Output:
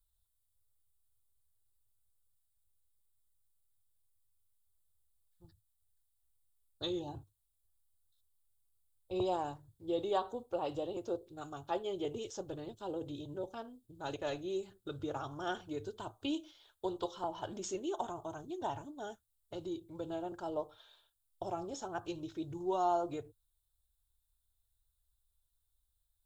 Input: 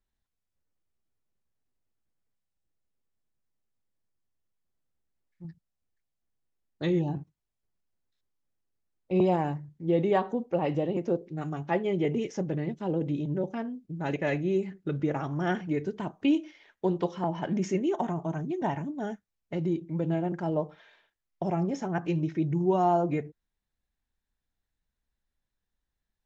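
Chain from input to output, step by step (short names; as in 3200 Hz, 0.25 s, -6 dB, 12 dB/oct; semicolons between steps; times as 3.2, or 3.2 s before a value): EQ curve 110 Hz 0 dB, 160 Hz -29 dB, 340 Hz -14 dB, 1400 Hz -8 dB, 2000 Hz -26 dB, 3600 Hz +1 dB, 5900 Hz -7 dB, 8700 Hz +8 dB; gain +4 dB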